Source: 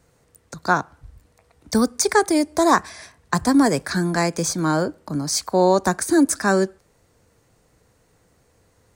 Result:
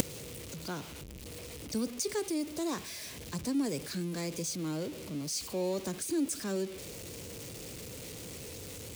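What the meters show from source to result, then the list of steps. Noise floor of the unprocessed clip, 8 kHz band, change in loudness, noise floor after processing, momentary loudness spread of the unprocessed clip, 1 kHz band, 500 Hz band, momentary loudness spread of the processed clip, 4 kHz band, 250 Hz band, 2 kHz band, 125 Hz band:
-62 dBFS, -11.0 dB, -16.5 dB, -45 dBFS, 9 LU, -24.0 dB, -15.0 dB, 10 LU, -10.0 dB, -14.0 dB, -20.0 dB, -12.5 dB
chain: zero-crossing step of -20.5 dBFS; HPF 92 Hz 6 dB/oct; band shelf 1100 Hz -10.5 dB; flipped gate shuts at -23 dBFS, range -25 dB; gain +9 dB

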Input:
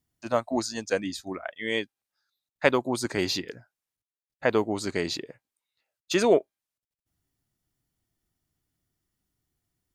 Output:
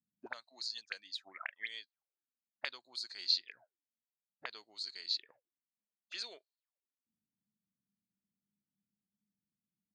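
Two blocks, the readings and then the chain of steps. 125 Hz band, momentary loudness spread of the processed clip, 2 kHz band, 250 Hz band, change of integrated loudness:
under -40 dB, 16 LU, -13.0 dB, under -35 dB, -12.5 dB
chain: dynamic EQ 1600 Hz, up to +5 dB, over -44 dBFS, Q 2.2; auto-wah 200–4300 Hz, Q 13, up, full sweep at -27 dBFS; gain +5 dB

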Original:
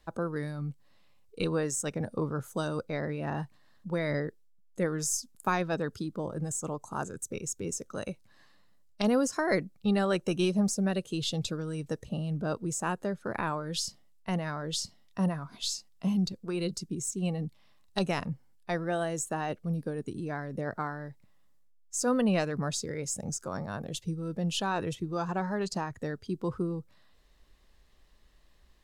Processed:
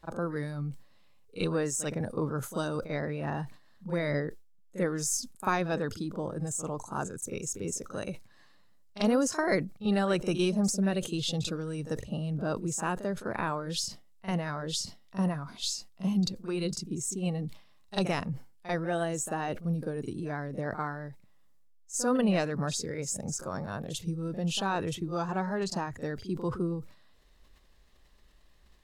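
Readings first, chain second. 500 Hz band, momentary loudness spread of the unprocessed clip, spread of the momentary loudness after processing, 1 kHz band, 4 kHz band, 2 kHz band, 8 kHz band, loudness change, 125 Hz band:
+0.5 dB, 9 LU, 9 LU, +0.5 dB, +0.5 dB, +0.5 dB, +0.5 dB, +0.5 dB, +0.5 dB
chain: vibrato 6.1 Hz 12 cents; pre-echo 42 ms -13 dB; sustainer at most 130 dB/s

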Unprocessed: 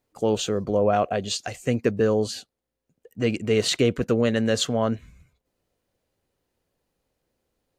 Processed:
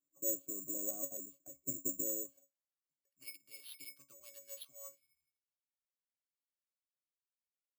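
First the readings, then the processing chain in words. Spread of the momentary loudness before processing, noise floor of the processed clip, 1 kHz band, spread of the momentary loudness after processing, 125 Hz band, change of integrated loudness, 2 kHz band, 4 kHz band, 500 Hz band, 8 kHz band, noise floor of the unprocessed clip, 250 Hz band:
6 LU, under -85 dBFS, -36.5 dB, 16 LU, -35.0 dB, -16.0 dB, -28.5 dB, -29.0 dB, -28.0 dB, -6.0 dB, -83 dBFS, -25.5 dB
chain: pre-emphasis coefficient 0.8; band-pass sweep 340 Hz -> 4000 Hz, 2.15–3.39; air absorption 110 m; octave resonator C#, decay 0.16 s; careless resampling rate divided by 6×, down none, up zero stuff; gain +10 dB

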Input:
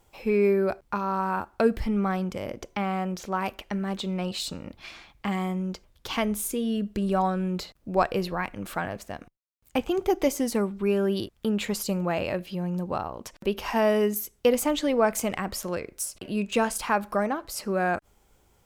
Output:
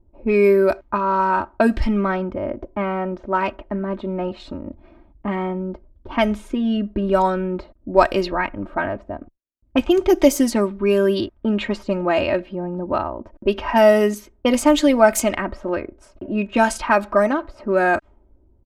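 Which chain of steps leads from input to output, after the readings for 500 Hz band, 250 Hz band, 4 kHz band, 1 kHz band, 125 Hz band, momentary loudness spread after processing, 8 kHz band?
+8.0 dB, +7.0 dB, +4.0 dB, +7.5 dB, +3.0 dB, 12 LU, +2.5 dB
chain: comb 3.2 ms, depth 76%; low-pass opened by the level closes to 300 Hz, open at -18.5 dBFS; gain +6.5 dB

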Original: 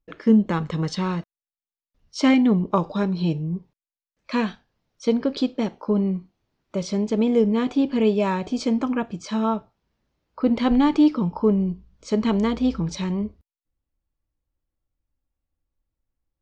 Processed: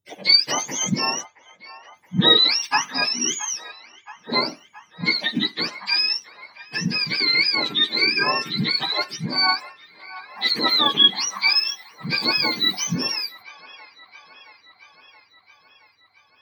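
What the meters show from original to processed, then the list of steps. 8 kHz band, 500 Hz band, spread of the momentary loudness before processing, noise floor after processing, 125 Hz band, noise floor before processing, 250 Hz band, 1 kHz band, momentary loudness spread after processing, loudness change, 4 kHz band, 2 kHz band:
n/a, -8.0 dB, 10 LU, -58 dBFS, -5.0 dB, under -85 dBFS, -10.5 dB, +2.5 dB, 12 LU, +3.0 dB, +20.5 dB, +13.0 dB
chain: spectrum mirrored in octaves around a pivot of 1000 Hz; band-limited delay 0.673 s, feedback 66%, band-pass 1300 Hz, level -15.5 dB; gain +5 dB

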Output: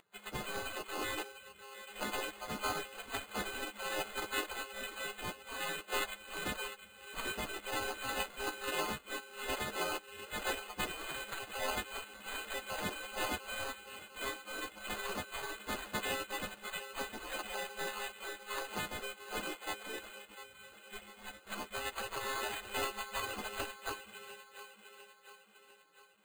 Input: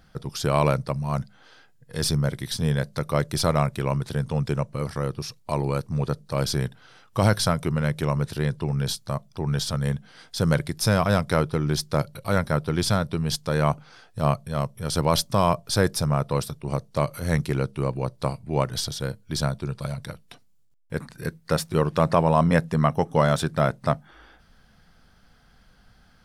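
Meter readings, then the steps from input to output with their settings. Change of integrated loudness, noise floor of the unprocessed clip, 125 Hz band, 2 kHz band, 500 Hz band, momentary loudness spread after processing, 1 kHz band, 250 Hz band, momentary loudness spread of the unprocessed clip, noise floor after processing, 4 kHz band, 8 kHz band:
-14.5 dB, -57 dBFS, -31.5 dB, -4.5 dB, -17.0 dB, 13 LU, -12.5 dB, -21.5 dB, 10 LU, -60 dBFS, -8.5 dB, -10.0 dB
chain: frequency quantiser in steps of 3 st; compressor, threshold -20 dBFS, peak gain reduction 9.5 dB; spectral gate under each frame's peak -30 dB weak; thin delay 0.701 s, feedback 53%, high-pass 2200 Hz, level -10 dB; careless resampling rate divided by 8×, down none, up hold; gain +15 dB

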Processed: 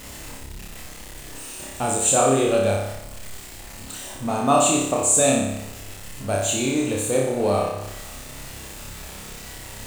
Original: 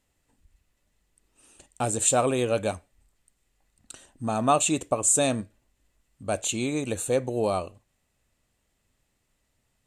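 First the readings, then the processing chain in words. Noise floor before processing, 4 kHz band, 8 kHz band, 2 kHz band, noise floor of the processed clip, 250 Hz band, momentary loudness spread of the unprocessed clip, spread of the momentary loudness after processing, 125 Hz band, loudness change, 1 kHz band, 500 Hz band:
-74 dBFS, +6.0 dB, +5.0 dB, +6.0 dB, -39 dBFS, +5.5 dB, 11 LU, 21 LU, +5.0 dB, +5.0 dB, +5.0 dB, +5.5 dB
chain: zero-crossing step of -35 dBFS; on a send: flutter echo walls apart 5.1 m, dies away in 0.83 s

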